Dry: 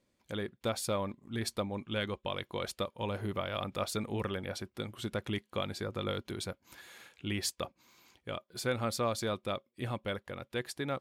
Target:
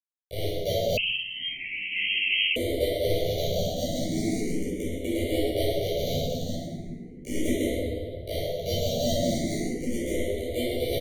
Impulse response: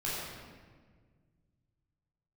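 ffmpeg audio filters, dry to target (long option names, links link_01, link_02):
-filter_complex "[0:a]highpass=frequency=180:width=0.5412,highpass=frequency=180:width=1.3066,asplit=2[link_01][link_02];[link_02]acompressor=threshold=-48dB:ratio=8,volume=1dB[link_03];[link_01][link_03]amix=inputs=2:normalize=0,acrusher=samples=17:mix=1:aa=0.000001,volume=24dB,asoftclip=hard,volume=-24dB,acrusher=bits=4:mix=0:aa=0.000001,asettb=1/sr,asplit=3[link_04][link_05][link_06];[link_04]atrim=end=8.364[link_07];[link_05]atrim=start=8.36:end=8.84,asetpts=PTS-STARTPTS,afade=type=in:duration=0.004:curve=qsin,afade=type=out:start_time=0.476:duration=0.004:curve=qsin,afreqshift=-32[link_08];[link_06]atrim=start=8.836[link_09];[link_07][link_08]acrossfade=duration=0.004:curve1=hsin:curve2=qsin[link_10];[link_10][link_09]acrossfade=duration=0.004:curve1=qsin:curve2=hsin,asplit=2[link_11][link_12];[link_12]adelay=12,volume=-4dB[link_13];[link_11][link_13]amix=inputs=2:normalize=0[link_14];[1:a]atrim=start_sample=2205,asetrate=32634,aresample=44100[link_15];[link_14][link_15]afir=irnorm=-1:irlink=0,asettb=1/sr,asplit=3[link_16][link_17][link_18];[link_16]atrim=end=0.974[link_19];[link_17]atrim=start=0.97:end=2.56,asetpts=PTS-STARTPTS,afade=type=in:duration=0.004:curve=qsin,afade=type=out:start_time=1.586:duration=0.004:curve=qsin,lowpass=frequency=2700:width_type=q:width=0.5098,lowpass=frequency=2700:width_type=q:width=0.6013,lowpass=frequency=2700:width_type=q:width=0.9,lowpass=frequency=2700:width_type=q:width=2.563,afreqshift=-3200[link_20];[link_18]atrim=start=2.556[link_21];[link_19][link_20]acrossfade=duration=0.004:curve1=hsin:curve2=qsin[link_22];[link_22][link_21]acrossfade=duration=0.004:curve1=qsin:curve2=hsin,asuperstop=centerf=1200:order=20:qfactor=0.9,asplit=2[link_23][link_24];[link_24]afreqshift=0.38[link_25];[link_23][link_25]amix=inputs=2:normalize=1,volume=2dB"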